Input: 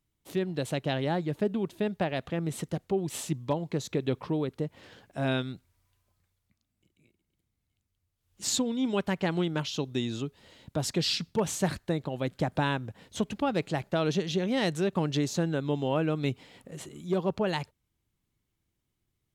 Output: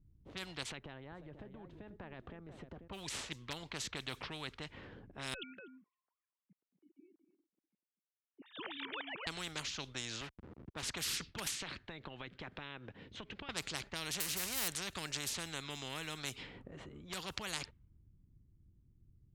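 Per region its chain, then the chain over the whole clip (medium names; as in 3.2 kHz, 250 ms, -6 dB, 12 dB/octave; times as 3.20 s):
0.63–2.88 s: compression, threshold -40 dBFS + delay 490 ms -14 dB
5.34–9.27 s: formants replaced by sine waves + high-pass 260 Hz + delay 244 ms -13 dB
10.21–10.83 s: send-on-delta sampling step -43.5 dBFS + high-pass 110 Hz + bass shelf 340 Hz -3.5 dB
11.47–13.49 s: frequency weighting D + compression 8:1, threshold -35 dBFS
14.20–14.68 s: zero-crossing glitches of -27.5 dBFS + band-stop 3.4 kHz, Q 5.4
whole clip: level-controlled noise filter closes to 470 Hz, open at -23.5 dBFS; amplifier tone stack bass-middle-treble 6-0-2; spectrum-flattening compressor 4:1; trim +14 dB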